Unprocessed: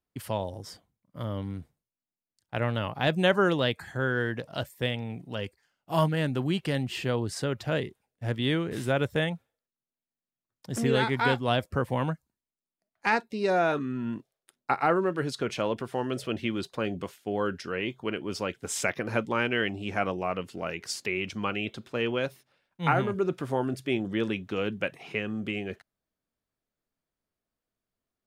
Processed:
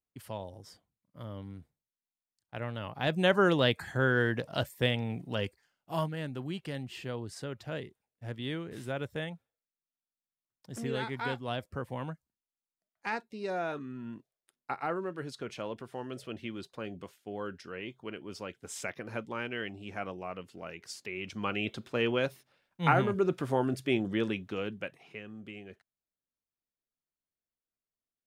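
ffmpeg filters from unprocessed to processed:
-af "volume=3.16,afade=t=in:st=2.78:d=0.96:silence=0.316228,afade=t=out:st=5.43:d=0.64:silence=0.298538,afade=t=in:st=21.12:d=0.57:silence=0.354813,afade=t=out:st=23.97:d=1.12:silence=0.237137"

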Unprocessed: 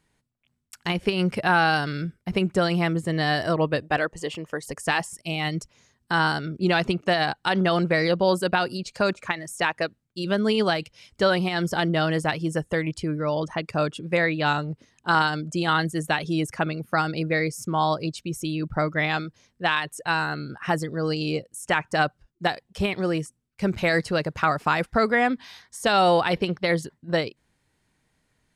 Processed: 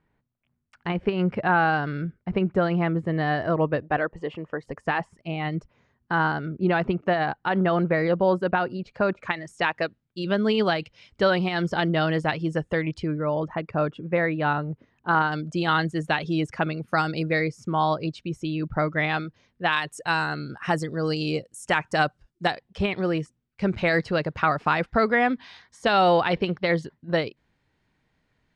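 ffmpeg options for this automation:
-af "asetnsamples=n=441:p=0,asendcmd='9.23 lowpass f 3900;13.18 lowpass f 1800;15.32 lowpass f 4300;16.88 lowpass f 8000;17.41 lowpass f 3400;19.73 lowpass f 8600;22.51 lowpass f 3900',lowpass=1800"

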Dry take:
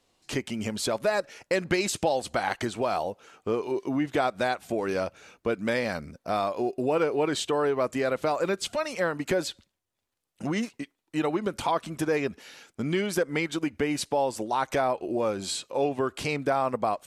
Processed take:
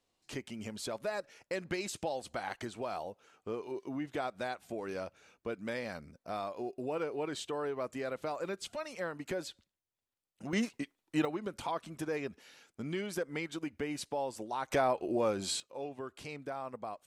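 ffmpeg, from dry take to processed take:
-af "asetnsamples=n=441:p=0,asendcmd='10.53 volume volume -2.5dB;11.25 volume volume -10dB;14.71 volume volume -3.5dB;15.6 volume volume -15dB',volume=0.282"

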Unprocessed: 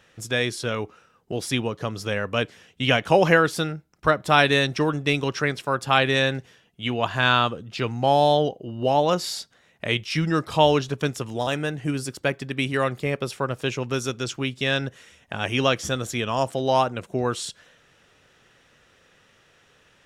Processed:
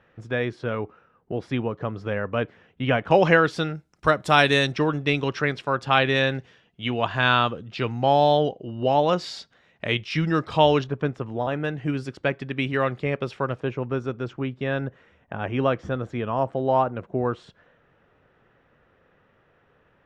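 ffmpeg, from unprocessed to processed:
-af "asetnsamples=n=441:p=0,asendcmd='3.11 lowpass f 4200;3.75 lowpass f 10000;4.72 lowpass f 3900;10.84 lowpass f 1600;11.64 lowpass f 3000;13.6 lowpass f 1400',lowpass=1700"

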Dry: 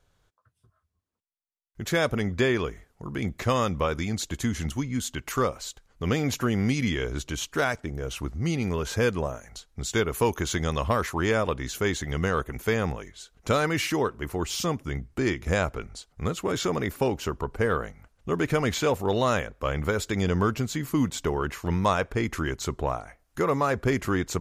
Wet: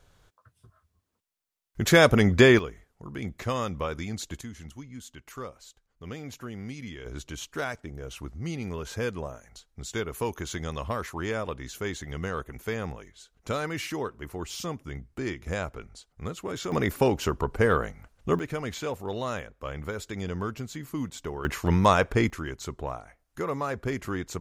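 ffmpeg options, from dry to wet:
-af "asetnsamples=n=441:p=0,asendcmd='2.59 volume volume -5dB;4.41 volume volume -13.5dB;7.06 volume volume -6.5dB;16.72 volume volume 2.5dB;18.39 volume volume -8dB;21.45 volume volume 3.5dB;22.3 volume volume -6dB',volume=2.24"

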